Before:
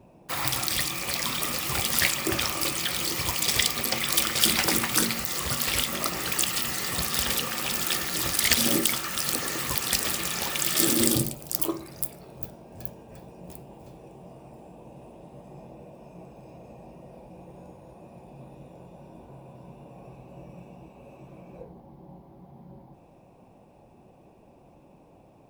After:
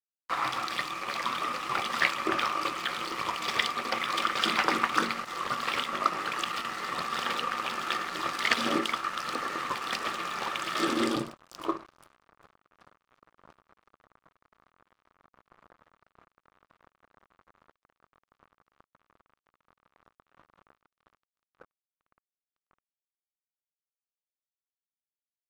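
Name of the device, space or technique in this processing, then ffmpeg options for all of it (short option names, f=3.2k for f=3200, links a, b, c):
pocket radio on a weak battery: -filter_complex "[0:a]asettb=1/sr,asplit=3[a][b][c];[a]atrim=end=21.174[d];[b]atrim=start=21.17:end=21.86,asetpts=PTS-STARTPTS,afade=t=in:d=0.004:c=qsin,afade=t=out:st=0.686:d=0.004:c=qsin,adynamicequalizer=threshold=0.00112:dfrequency=990:dqfactor=0.87:tfrequency=990:tqfactor=0.87:attack=5:release=100:ratio=0.375:range=3.5:mode=cutabove:tftype=bell[e];[c]atrim=start=21.856[f];[d][e]acrossfade=d=0.004:c1=hsin:c2=qsin[g];[g][f]acrossfade=d=0.004:c1=qsin:c2=hsin,highpass=250,lowpass=3.1k,aeval=exprs='sgn(val(0))*max(abs(val(0))-0.0075,0)':c=same,equalizer=f=1.2k:t=o:w=0.58:g=10.5"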